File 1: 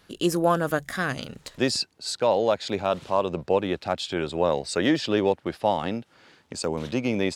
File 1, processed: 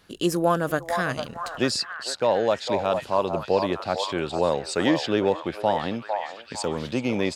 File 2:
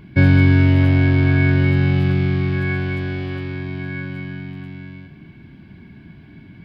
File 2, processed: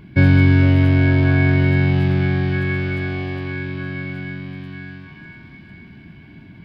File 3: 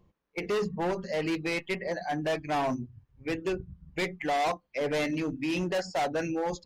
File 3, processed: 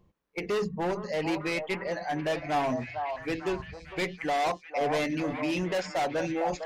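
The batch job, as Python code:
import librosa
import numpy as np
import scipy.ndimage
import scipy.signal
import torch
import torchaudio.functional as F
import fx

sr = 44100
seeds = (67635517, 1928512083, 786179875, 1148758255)

y = fx.echo_stepped(x, sr, ms=453, hz=800.0, octaves=0.7, feedback_pct=70, wet_db=-3.5)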